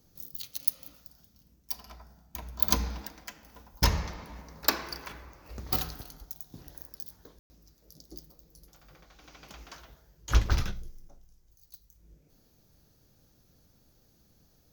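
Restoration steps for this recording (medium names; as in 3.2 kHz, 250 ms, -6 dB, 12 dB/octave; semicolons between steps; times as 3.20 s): room tone fill 7.39–7.50 s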